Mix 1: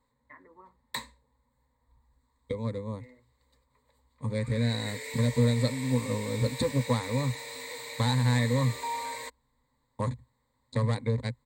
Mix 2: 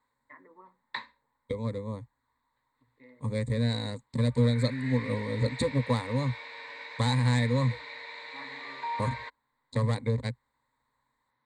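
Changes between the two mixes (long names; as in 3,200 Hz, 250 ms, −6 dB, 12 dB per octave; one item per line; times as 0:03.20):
second voice: entry −1.00 s
background: add loudspeaker in its box 240–3,800 Hz, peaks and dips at 250 Hz −8 dB, 500 Hz −10 dB, 1,500 Hz +7 dB, 3,100 Hz −3 dB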